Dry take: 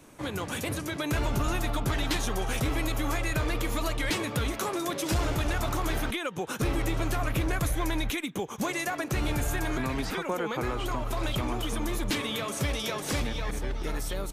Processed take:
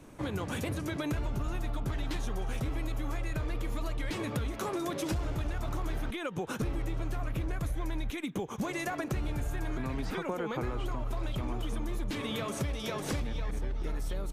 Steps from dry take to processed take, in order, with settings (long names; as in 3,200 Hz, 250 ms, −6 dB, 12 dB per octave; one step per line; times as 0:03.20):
spectral tilt −1.5 dB per octave
downward compressor 6 to 1, threshold −29 dBFS, peak gain reduction 10.5 dB
level −1 dB